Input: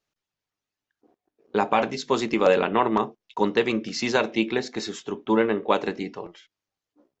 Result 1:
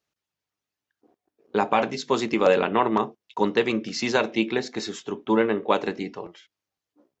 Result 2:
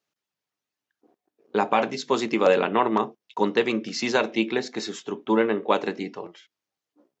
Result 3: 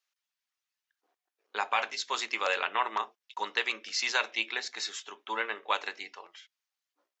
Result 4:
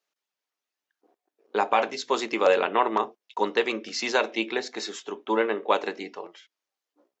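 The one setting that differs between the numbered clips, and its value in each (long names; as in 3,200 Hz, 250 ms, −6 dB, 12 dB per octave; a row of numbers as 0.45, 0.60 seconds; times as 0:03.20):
high-pass filter, corner frequency: 43, 140, 1,300, 410 Hertz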